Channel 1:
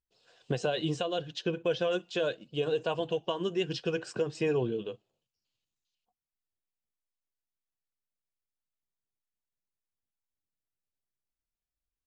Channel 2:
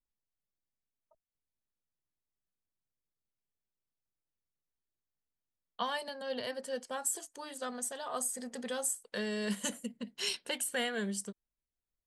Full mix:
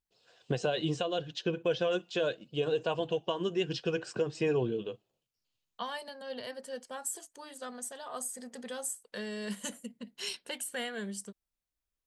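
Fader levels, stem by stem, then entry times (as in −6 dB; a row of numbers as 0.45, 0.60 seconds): −0.5, −3.0 decibels; 0.00, 0.00 seconds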